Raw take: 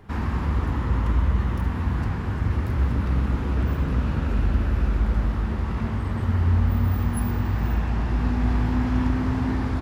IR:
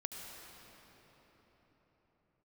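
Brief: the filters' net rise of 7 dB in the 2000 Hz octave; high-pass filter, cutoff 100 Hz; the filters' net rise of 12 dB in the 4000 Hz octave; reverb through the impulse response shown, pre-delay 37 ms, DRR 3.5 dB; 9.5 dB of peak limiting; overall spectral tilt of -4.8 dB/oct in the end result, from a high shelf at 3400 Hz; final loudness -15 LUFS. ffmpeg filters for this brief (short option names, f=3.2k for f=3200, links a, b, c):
-filter_complex "[0:a]highpass=100,equalizer=f=2k:t=o:g=4.5,highshelf=f=3.4k:g=9,equalizer=f=4k:t=o:g=8,alimiter=limit=-21.5dB:level=0:latency=1,asplit=2[a][b];[1:a]atrim=start_sample=2205,adelay=37[c];[b][c]afir=irnorm=-1:irlink=0,volume=-2.5dB[d];[a][d]amix=inputs=2:normalize=0,volume=14dB"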